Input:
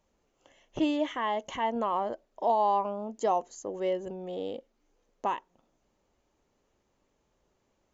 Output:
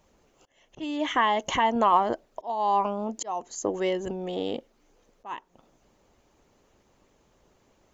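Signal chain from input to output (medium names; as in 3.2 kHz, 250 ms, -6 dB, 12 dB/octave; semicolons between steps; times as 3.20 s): dynamic bell 540 Hz, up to -7 dB, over -44 dBFS, Q 3.3; slow attack 429 ms; harmonic-percussive split percussive +6 dB; trim +6.5 dB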